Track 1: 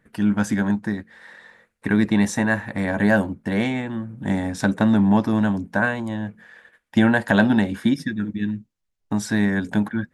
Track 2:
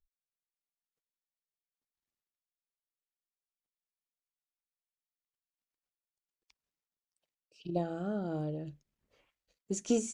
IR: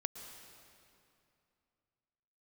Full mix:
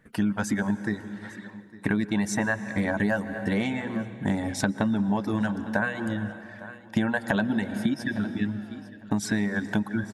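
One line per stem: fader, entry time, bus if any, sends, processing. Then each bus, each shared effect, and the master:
-1.5 dB, 0.00 s, send -4 dB, echo send -19 dB, reverb removal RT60 1.4 s
-2.5 dB, 0.40 s, no send, no echo send, high-pass 1.2 kHz 12 dB/octave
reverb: on, RT60 2.6 s, pre-delay 105 ms
echo: feedback delay 855 ms, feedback 17%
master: compression 6:1, threshold -22 dBFS, peak gain reduction 11.5 dB

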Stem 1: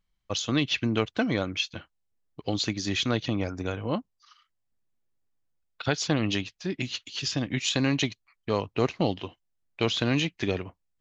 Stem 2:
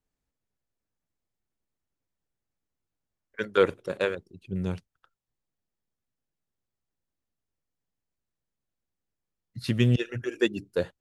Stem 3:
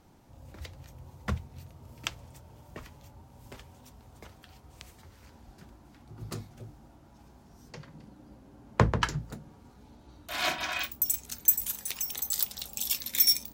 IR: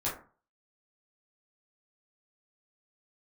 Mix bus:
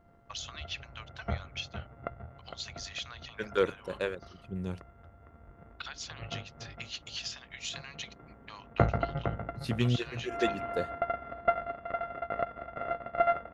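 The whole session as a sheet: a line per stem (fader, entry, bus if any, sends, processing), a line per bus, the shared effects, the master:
-2.0 dB, 0.00 s, no send, no echo send, compression 6:1, threshold -33 dBFS, peak gain reduction 14 dB; high-pass 920 Hz 24 dB/octave
-6.0 dB, 0.00 s, no send, no echo send, none
-1.5 dB, 0.00 s, no send, echo send -8 dB, sorted samples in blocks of 64 samples; inverse Chebyshev low-pass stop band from 7.3 kHz, stop band 70 dB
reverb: none
echo: feedback delay 458 ms, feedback 42%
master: none

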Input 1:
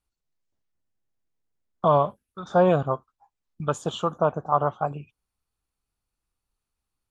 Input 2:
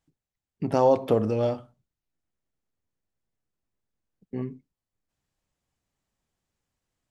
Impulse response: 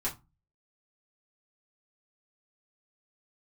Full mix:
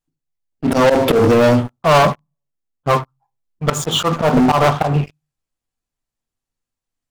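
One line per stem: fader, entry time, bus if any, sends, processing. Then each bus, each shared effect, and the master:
+1.0 dB, 0.00 s, muted 2.14–2.83 s, send -13 dB, none
-1.5 dB, 0.00 s, send -5.5 dB, treble shelf 3.1 kHz +5 dB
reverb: on, RT60 0.25 s, pre-delay 3 ms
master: slow attack 128 ms; waveshaping leveller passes 5

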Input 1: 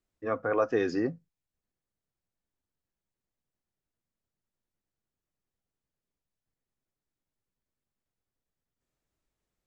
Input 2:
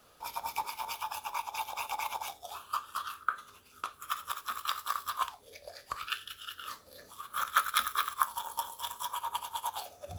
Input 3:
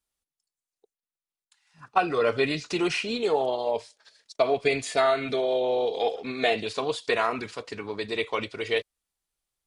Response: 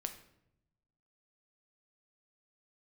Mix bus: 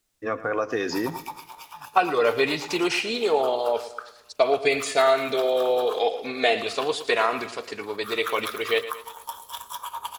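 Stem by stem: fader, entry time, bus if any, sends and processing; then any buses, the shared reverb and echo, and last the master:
+1.5 dB, 0.00 s, send -8 dB, echo send -13.5 dB, treble shelf 2 kHz +12 dB; compression 2.5:1, threshold -28 dBFS, peak gain reduction 6.5 dB
-0.5 dB, 0.70 s, send -8 dB, no echo send, auto duck -12 dB, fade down 0.40 s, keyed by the third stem
+3.0 dB, 0.00 s, no send, echo send -13.5 dB, tone controls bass -8 dB, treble +1 dB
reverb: on, RT60 0.80 s, pre-delay 7 ms
echo: feedback delay 113 ms, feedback 46%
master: hum notches 50/100 Hz

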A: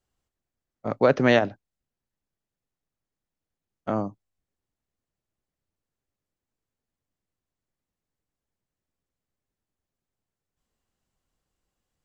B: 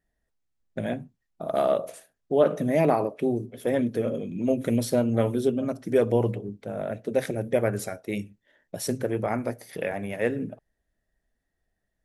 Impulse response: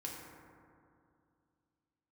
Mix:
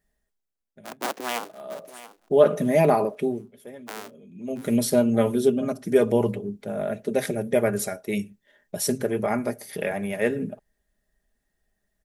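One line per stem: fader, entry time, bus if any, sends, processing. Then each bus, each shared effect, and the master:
-11.0 dB, 0.00 s, no send, echo send -15.5 dB, cycle switcher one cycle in 2, inverted; high-pass 230 Hz 24 dB/octave
+1.5 dB, 0.00 s, no send, no echo send, comb 4.9 ms, depth 46%; auto duck -23 dB, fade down 0.70 s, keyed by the first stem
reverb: none
echo: feedback delay 680 ms, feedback 26%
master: treble shelf 6 kHz +6.5 dB

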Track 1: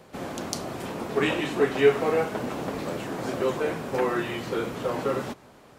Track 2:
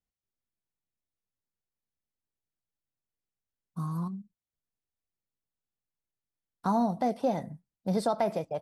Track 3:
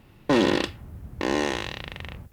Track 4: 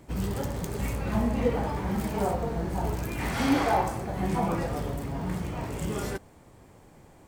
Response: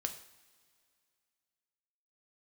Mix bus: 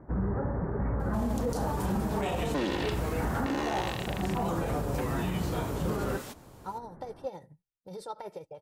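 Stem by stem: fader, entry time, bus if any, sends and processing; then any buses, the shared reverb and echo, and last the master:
+2.5 dB, 1.00 s, no send, pre-emphasis filter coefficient 0.8
-9.0 dB, 0.00 s, no send, comb 2.2 ms, depth 81%; tremolo triangle 12 Hz, depth 65%
+2.5 dB, 2.25 s, no send, none
+1.5 dB, 0.00 s, no send, steep low-pass 1.7 kHz 48 dB/octave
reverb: none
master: peak limiter -21.5 dBFS, peak gain reduction 15.5 dB

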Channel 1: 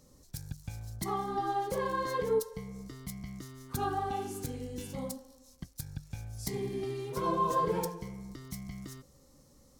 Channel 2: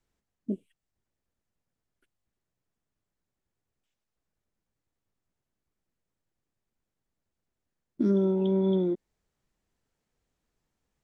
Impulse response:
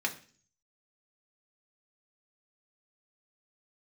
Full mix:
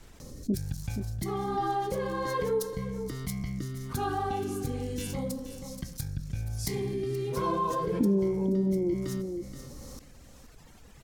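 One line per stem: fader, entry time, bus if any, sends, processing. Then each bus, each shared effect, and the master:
-4.5 dB, 0.20 s, send -15.5 dB, echo send -17 dB, rotary cabinet horn 1.2 Hz
-0.5 dB, 0.00 s, no send, echo send -14 dB, reverb removal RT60 1.5 s; low-pass that closes with the level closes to 480 Hz, closed at -27.5 dBFS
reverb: on, RT60 0.45 s, pre-delay 3 ms
echo: delay 476 ms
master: bass shelf 110 Hz +5 dB; level flattener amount 50%

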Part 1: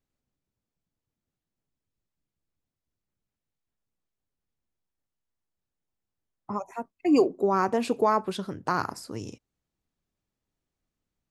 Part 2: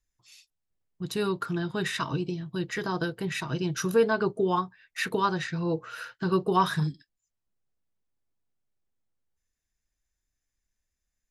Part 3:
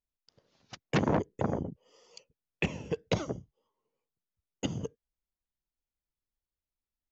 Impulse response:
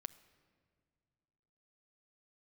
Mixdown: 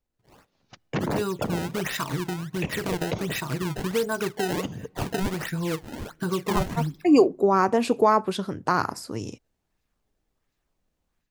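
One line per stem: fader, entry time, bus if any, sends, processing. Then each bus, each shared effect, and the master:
-3.5 dB, 0.00 s, no send, none
-5.5 dB, 0.00 s, send -6 dB, compression 2:1, threshold -32 dBFS, peak gain reduction 8.5 dB; decimation with a swept rate 22×, swing 160% 1.4 Hz
-9.5 dB, 0.00 s, send -10 dB, treble shelf 4 kHz -5.5 dB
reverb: on, pre-delay 7 ms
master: level rider gain up to 7.5 dB

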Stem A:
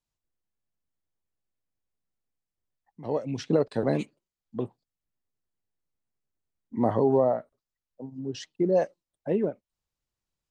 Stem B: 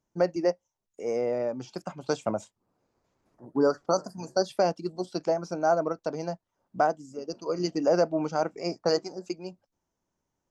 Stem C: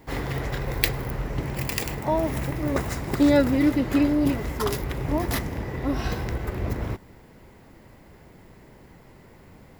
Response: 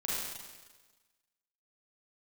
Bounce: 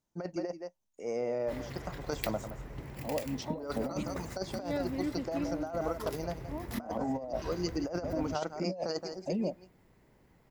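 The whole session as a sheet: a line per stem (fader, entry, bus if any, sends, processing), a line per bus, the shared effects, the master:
-4.0 dB, 0.00 s, no send, no echo send, static phaser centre 390 Hz, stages 6
-6.0 dB, 0.00 s, no send, echo send -12.5 dB, peaking EQ 410 Hz -3 dB 0.57 oct
-16.5 dB, 1.40 s, no send, no echo send, none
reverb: none
echo: delay 171 ms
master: compressor with a negative ratio -32 dBFS, ratio -0.5

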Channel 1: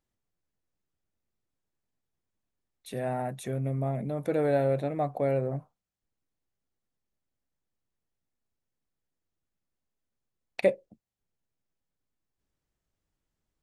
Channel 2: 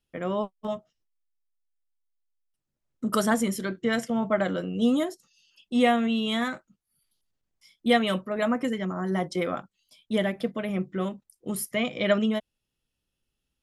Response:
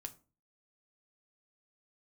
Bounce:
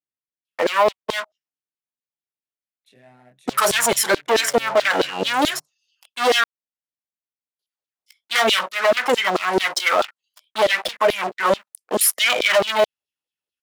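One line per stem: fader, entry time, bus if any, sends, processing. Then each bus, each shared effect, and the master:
-14.0 dB, 0.00 s, no send, local Wiener filter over 9 samples; frequency weighting D; chorus 0.16 Hz, delay 20 ms, depth 4.6 ms
+0.5 dB, 0.45 s, muted 6.44–7.59 s, no send, waveshaping leveller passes 5; LFO high-pass saw down 4.6 Hz 410–4300 Hz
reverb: none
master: peak limiter -7 dBFS, peak gain reduction 7.5 dB

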